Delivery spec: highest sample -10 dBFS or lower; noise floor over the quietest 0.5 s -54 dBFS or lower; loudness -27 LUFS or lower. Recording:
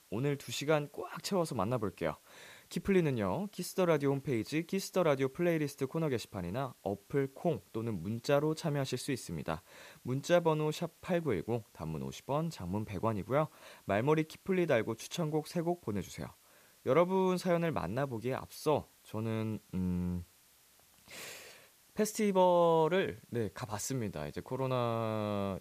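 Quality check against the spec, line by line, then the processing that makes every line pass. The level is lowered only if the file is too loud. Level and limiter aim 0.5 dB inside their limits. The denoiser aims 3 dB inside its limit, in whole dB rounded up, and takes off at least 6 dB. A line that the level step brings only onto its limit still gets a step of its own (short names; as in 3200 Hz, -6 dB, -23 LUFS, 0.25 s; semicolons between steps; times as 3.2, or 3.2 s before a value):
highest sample -16.0 dBFS: OK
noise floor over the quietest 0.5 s -65 dBFS: OK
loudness -34.0 LUFS: OK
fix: none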